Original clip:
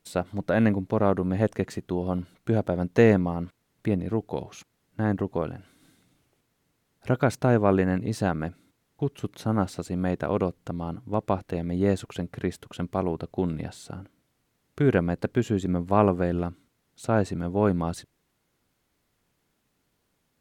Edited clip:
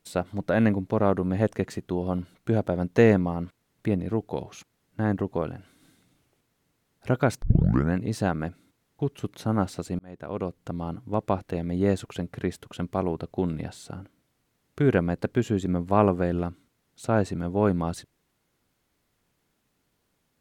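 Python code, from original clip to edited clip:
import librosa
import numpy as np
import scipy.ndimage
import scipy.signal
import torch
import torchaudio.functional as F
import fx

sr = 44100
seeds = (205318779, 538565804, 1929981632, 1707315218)

y = fx.edit(x, sr, fx.tape_start(start_s=7.42, length_s=0.52),
    fx.fade_in_span(start_s=9.99, length_s=0.76), tone=tone)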